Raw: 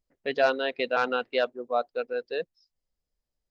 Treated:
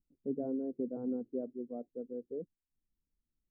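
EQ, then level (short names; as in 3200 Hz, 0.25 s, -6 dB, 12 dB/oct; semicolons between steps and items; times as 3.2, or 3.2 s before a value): ladder low-pass 370 Hz, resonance 20%; air absorption 470 m; bell 290 Hz +5.5 dB 1.2 oct; +3.5 dB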